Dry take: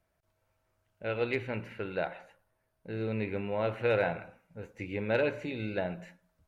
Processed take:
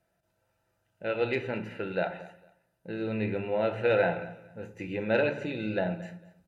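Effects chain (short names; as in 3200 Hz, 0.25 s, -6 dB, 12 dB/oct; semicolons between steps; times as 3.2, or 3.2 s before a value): notch comb 1100 Hz; shoebox room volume 370 m³, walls furnished, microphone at 0.79 m; treble ducked by the level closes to 2700 Hz, closed at -18.5 dBFS; on a send: feedback echo 0.226 s, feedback 24%, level -19.5 dB; on the sum: gain +2.5 dB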